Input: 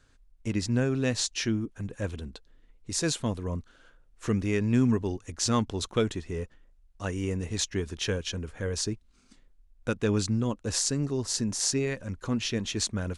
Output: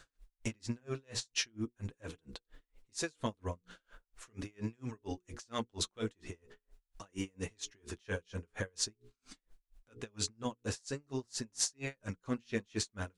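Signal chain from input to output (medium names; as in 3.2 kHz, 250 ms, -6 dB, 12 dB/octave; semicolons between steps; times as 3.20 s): bass shelf 350 Hz -8.5 dB; hum notches 60/120/180/240/300/360/420/480 Hz; compression 2:1, threshold -47 dBFS, peak gain reduction 12.5 dB; flange 0.42 Hz, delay 5.9 ms, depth 4.4 ms, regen -32%; logarithmic tremolo 4.3 Hz, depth 39 dB; trim +14 dB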